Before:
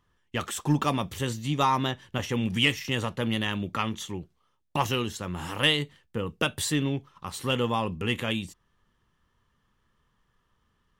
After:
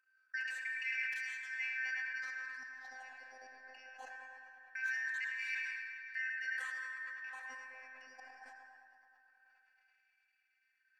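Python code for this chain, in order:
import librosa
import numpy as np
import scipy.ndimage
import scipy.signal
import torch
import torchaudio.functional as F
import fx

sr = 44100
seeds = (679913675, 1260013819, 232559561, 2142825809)

p1 = fx.band_shuffle(x, sr, order='3142')
p2 = fx.high_shelf(p1, sr, hz=3500.0, db=11.0)
p3 = fx.level_steps(p2, sr, step_db=17)
p4 = fx.gate_flip(p3, sr, shuts_db=-19.0, range_db=-28)
p5 = fx.wah_lfo(p4, sr, hz=0.22, low_hz=710.0, high_hz=2200.0, q=6.7)
p6 = fx.robotise(p5, sr, hz=259.0)
p7 = p6 + fx.echo_banded(p6, sr, ms=107, feedback_pct=82, hz=1400.0, wet_db=-4.5, dry=0)
p8 = fx.rev_freeverb(p7, sr, rt60_s=2.9, hf_ratio=0.8, predelay_ms=15, drr_db=4.0)
p9 = fx.sustainer(p8, sr, db_per_s=24.0)
y = p9 * 10.0 ** (3.5 / 20.0)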